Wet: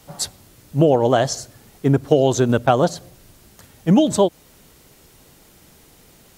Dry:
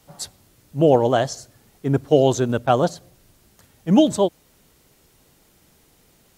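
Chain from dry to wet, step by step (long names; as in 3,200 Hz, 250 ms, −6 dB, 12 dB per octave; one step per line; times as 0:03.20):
downward compressor 6 to 1, threshold −18 dBFS, peak gain reduction 9 dB
level +7 dB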